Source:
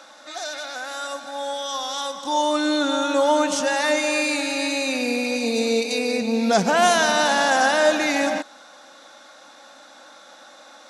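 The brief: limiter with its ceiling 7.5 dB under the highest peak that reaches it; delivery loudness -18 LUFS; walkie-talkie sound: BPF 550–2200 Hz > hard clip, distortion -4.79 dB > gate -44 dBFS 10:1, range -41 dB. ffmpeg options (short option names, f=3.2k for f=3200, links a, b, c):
-af "alimiter=limit=-13dB:level=0:latency=1,highpass=550,lowpass=2.2k,asoftclip=type=hard:threshold=-33dB,agate=range=-41dB:threshold=-44dB:ratio=10,volume=16.5dB"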